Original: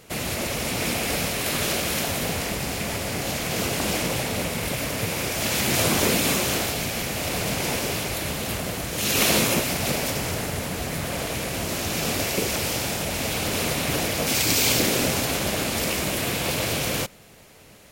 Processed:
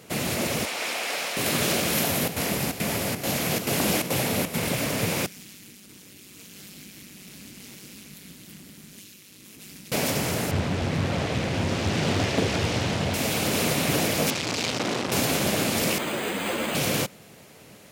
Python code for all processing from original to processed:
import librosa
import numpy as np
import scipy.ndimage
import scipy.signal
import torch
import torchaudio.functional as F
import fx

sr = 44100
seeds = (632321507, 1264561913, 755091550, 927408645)

y = fx.chain(x, sr, fx.highpass(hz=700.0, slope=12),
    fx.high_shelf(hz=8600.0, db=-11.5), at=(0.65, 1.37))
y = fx.chain(y, sr, fx.peak_eq(hz=12000.0, db=7.5, octaves=0.25),
    fx.chopper(hz=2.3, depth_pct=65, duty_pct=80), at=(1.93, 4.59))
y = fx.chain(y, sr, fx.tone_stack(knobs='6-0-2'),
    fx.over_compress(threshold_db=-43.0, ratio=-1.0),
    fx.ring_mod(carrier_hz=98.0), at=(5.26, 9.92))
y = fx.chain(y, sr, fx.lowpass(hz=4900.0, slope=12),
    fx.peak_eq(hz=88.0, db=11.0, octaves=0.92),
    fx.doppler_dist(depth_ms=0.85), at=(10.51, 13.14))
y = fx.chain(y, sr, fx.lowpass(hz=5400.0, slope=12),
    fx.transformer_sat(knee_hz=2000.0), at=(14.3, 15.12))
y = fx.chain(y, sr, fx.highpass(hz=210.0, slope=24),
    fx.resample_bad(factor=8, down='none', up='hold'),
    fx.ensemble(), at=(15.98, 16.75))
y = scipy.signal.sosfilt(scipy.signal.butter(2, 150.0, 'highpass', fs=sr, output='sos'), y)
y = fx.low_shelf(y, sr, hz=230.0, db=8.0)